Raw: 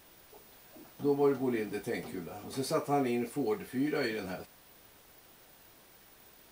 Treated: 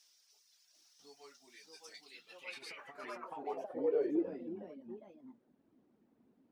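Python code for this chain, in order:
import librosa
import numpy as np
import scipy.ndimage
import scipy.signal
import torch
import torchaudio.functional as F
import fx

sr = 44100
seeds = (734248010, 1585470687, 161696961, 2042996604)

y = fx.dereverb_blind(x, sr, rt60_s=1.6)
y = fx.over_compress(y, sr, threshold_db=-35.0, ratio=-0.5, at=(2.52, 3.14))
y = fx.echo_pitch(y, sr, ms=746, semitones=2, count=3, db_per_echo=-3.0)
y = fx.filter_sweep_bandpass(y, sr, from_hz=5500.0, to_hz=250.0, start_s=1.91, end_s=4.46, q=4.0)
y = y * 10.0 ** (4.0 / 20.0)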